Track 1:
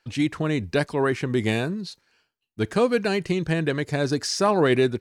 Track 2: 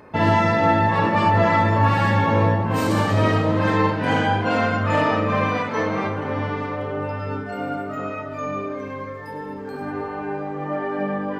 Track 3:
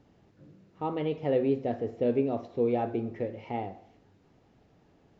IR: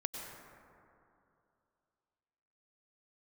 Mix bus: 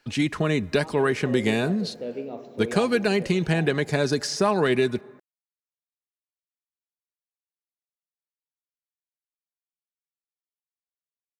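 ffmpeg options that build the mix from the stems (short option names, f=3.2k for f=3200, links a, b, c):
-filter_complex "[0:a]aecho=1:1:4.8:0.32,acrossover=split=120|1600[a][b][c];[a]acompressor=threshold=-43dB:ratio=4[d];[b]acompressor=threshold=-23dB:ratio=4[e];[c]acompressor=threshold=-32dB:ratio=4[f];[d][e][f]amix=inputs=3:normalize=0,volume=3dB,asplit=2[g][h];[h]volume=-22.5dB[i];[2:a]aemphasis=mode=production:type=bsi,dynaudnorm=f=120:g=21:m=9dB,volume=-16.5dB,asplit=2[j][k];[k]volume=-5.5dB[l];[3:a]atrim=start_sample=2205[m];[i][l]amix=inputs=2:normalize=0[n];[n][m]afir=irnorm=-1:irlink=0[o];[g][j][o]amix=inputs=3:normalize=0"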